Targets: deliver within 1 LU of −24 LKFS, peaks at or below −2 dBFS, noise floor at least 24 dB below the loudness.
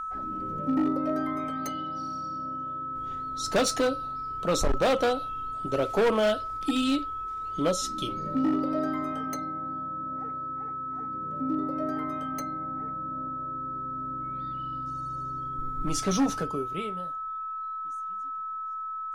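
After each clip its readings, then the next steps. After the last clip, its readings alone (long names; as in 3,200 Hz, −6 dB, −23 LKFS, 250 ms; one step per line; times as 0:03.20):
share of clipped samples 1.6%; peaks flattened at −19.5 dBFS; interfering tone 1,300 Hz; level of the tone −32 dBFS; integrated loudness −30.0 LKFS; sample peak −19.5 dBFS; target loudness −24.0 LKFS
→ clipped peaks rebuilt −19.5 dBFS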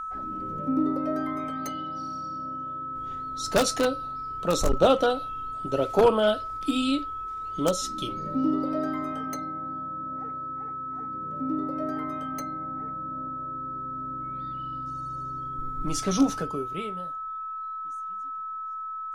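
share of clipped samples 0.0%; interfering tone 1,300 Hz; level of the tone −32 dBFS
→ notch filter 1,300 Hz, Q 30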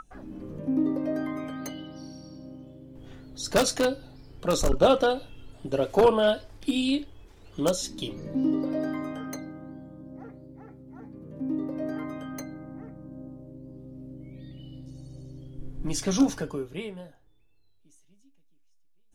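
interfering tone none found; integrated loudness −27.5 LKFS; sample peak −9.5 dBFS; target loudness −24.0 LKFS
→ level +3.5 dB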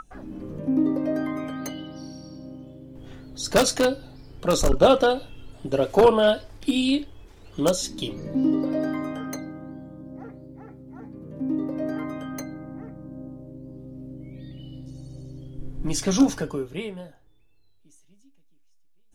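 integrated loudness −24.0 LKFS; sample peak −6.0 dBFS; background noise floor −56 dBFS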